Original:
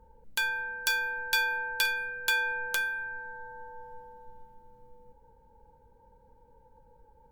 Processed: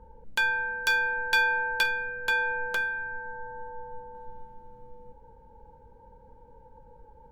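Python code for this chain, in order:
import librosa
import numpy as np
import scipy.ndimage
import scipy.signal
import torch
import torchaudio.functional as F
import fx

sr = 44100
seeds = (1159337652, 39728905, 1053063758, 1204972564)

y = fx.lowpass(x, sr, hz=fx.steps((0.0, 1800.0), (1.83, 1000.0), (4.15, 2400.0)), slope=6)
y = y * librosa.db_to_amplitude(7.0)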